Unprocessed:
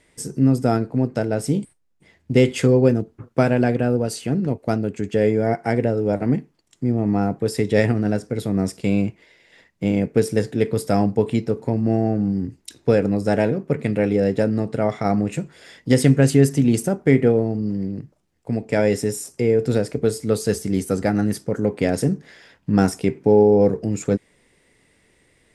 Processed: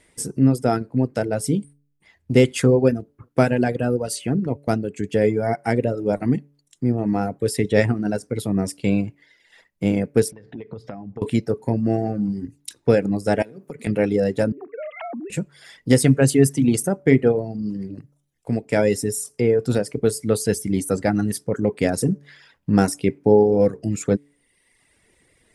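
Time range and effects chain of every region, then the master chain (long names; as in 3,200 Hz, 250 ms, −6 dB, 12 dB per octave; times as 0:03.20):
0:10.31–0:11.22: mains-hum notches 60/120/180 Hz + downward compressor 16 to 1, threshold −28 dBFS + high-frequency loss of the air 240 metres
0:13.42–0:13.87: high-pass filter 120 Hz 24 dB per octave + high-shelf EQ 3,900 Hz +9 dB + downward compressor, threshold −28 dBFS
0:14.52–0:15.30: three sine waves on the formant tracks + floating-point word with a short mantissa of 8 bits + downward compressor 16 to 1, threshold −29 dBFS
whole clip: hum removal 143.5 Hz, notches 4; reverb reduction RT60 1 s; parametric band 10,000 Hz +7.5 dB 0.34 octaves; level +1 dB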